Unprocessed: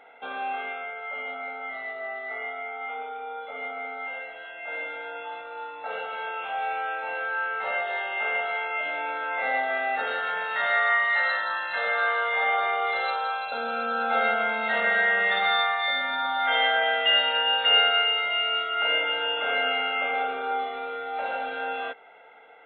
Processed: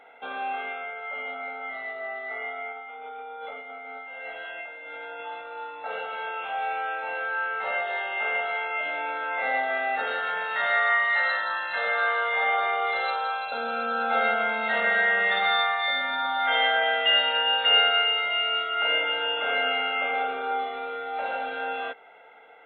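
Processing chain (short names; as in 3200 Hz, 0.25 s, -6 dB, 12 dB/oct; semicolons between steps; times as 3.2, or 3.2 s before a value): 2.72–5.21 negative-ratio compressor -39 dBFS, ratio -1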